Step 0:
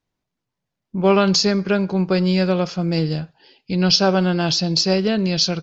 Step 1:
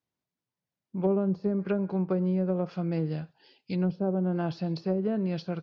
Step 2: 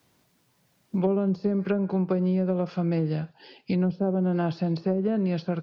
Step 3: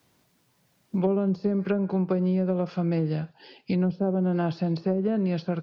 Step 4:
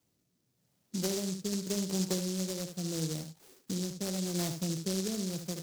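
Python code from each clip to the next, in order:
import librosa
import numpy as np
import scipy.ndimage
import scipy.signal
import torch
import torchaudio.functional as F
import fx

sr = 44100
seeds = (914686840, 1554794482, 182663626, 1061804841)

y1 = scipy.signal.sosfilt(scipy.signal.butter(2, 89.0, 'highpass', fs=sr, output='sos'), x)
y1 = fx.env_lowpass_down(y1, sr, base_hz=480.0, full_db=-12.5)
y1 = y1 * 10.0 ** (-8.5 / 20.0)
y2 = fx.band_squash(y1, sr, depth_pct=70)
y2 = y2 * 10.0 ** (2.5 / 20.0)
y3 = y2
y4 = y3 + 10.0 ** (-8.0 / 20.0) * np.pad(y3, (int(74 * sr / 1000.0), 0))[:len(y3)]
y4 = fx.rotary(y4, sr, hz=0.85)
y4 = fx.noise_mod_delay(y4, sr, seeds[0], noise_hz=5500.0, depth_ms=0.24)
y4 = y4 * 10.0 ** (-7.5 / 20.0)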